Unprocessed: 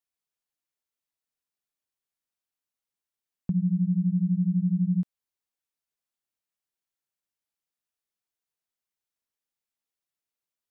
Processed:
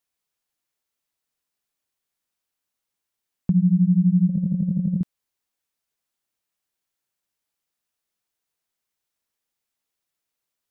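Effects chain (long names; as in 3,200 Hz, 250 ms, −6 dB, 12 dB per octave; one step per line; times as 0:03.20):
0:04.29–0:05.01: compressor whose output falls as the input rises −28 dBFS, ratio −0.5
level +7 dB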